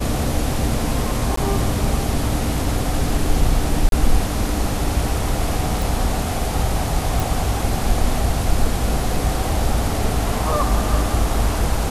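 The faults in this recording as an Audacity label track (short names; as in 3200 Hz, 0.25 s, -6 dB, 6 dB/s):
1.360000	1.370000	gap 14 ms
3.890000	3.920000	gap 32 ms
5.820000	5.820000	pop
7.200000	7.200000	pop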